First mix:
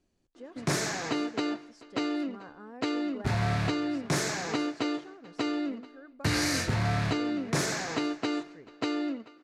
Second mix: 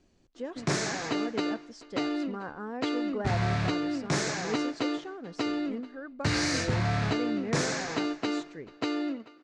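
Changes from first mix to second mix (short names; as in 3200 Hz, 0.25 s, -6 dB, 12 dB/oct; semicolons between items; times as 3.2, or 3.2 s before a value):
speech +9.0 dB; master: add LPF 7800 Hz 24 dB/oct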